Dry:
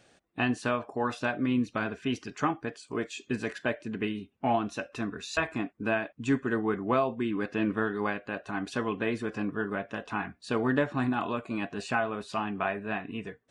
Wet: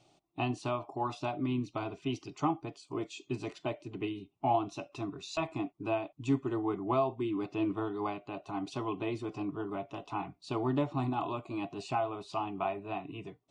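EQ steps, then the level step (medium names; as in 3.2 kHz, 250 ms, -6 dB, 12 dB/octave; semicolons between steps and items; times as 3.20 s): distance through air 70 m; static phaser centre 330 Hz, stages 8; 0.0 dB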